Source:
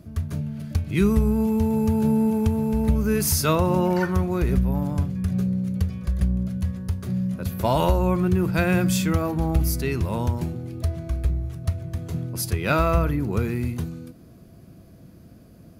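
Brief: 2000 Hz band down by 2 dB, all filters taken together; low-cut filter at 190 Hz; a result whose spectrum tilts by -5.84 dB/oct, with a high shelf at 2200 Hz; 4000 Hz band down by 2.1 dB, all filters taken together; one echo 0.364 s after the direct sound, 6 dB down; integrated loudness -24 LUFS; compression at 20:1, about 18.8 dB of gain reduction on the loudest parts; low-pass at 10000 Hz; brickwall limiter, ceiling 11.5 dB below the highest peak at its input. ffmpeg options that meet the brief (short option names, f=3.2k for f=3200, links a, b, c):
-af "highpass=190,lowpass=10k,equalizer=f=2k:t=o:g=-4,highshelf=f=2.2k:g=5,equalizer=f=4k:t=o:g=-7,acompressor=threshold=-36dB:ratio=20,alimiter=level_in=11.5dB:limit=-24dB:level=0:latency=1,volume=-11.5dB,aecho=1:1:364:0.501,volume=18.5dB"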